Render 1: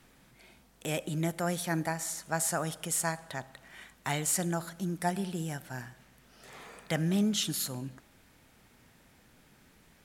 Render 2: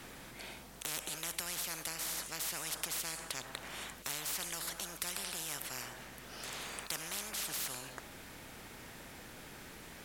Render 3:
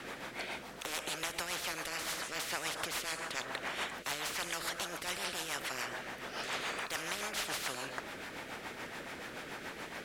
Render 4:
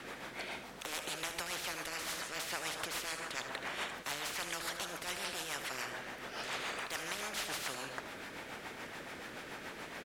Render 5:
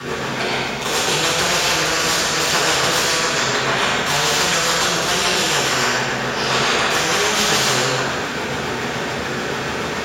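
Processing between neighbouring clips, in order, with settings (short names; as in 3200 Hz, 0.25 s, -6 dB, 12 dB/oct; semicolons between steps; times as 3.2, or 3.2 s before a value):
spectral compressor 10:1; gain -1 dB
overdrive pedal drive 21 dB, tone 1700 Hz, clips at -15.5 dBFS; companded quantiser 8-bit; rotary speaker horn 7 Hz
echo 76 ms -11 dB; gain -2 dB
reverb RT60 1.4 s, pre-delay 3 ms, DRR -11.5 dB; gain +8.5 dB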